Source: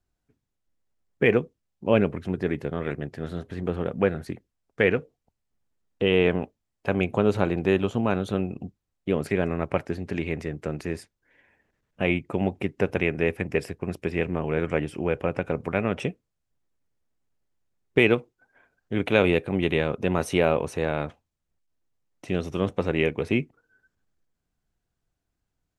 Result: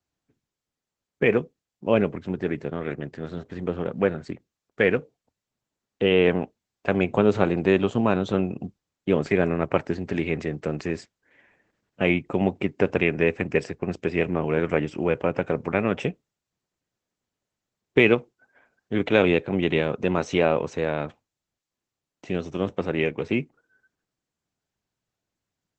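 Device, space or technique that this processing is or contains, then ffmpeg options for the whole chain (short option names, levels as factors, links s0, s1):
video call: -af "highpass=110,dynaudnorm=f=400:g=31:m=2" -ar 48000 -c:a libopus -b:a 12k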